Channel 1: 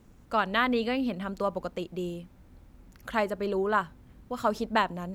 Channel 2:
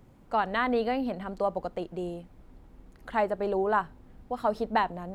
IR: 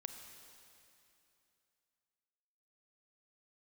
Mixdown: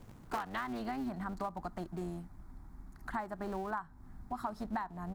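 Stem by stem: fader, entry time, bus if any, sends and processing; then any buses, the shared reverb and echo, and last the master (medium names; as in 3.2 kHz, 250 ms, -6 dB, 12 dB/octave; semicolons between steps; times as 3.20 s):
-0.5 dB, 0.00 s, no send, cycle switcher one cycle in 2, inverted; auto duck -19 dB, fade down 1.20 s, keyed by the second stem
+2.0 dB, 2.9 ms, no send, static phaser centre 1.2 kHz, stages 4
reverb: none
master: compression 12:1, threshold -34 dBFS, peak gain reduction 15.5 dB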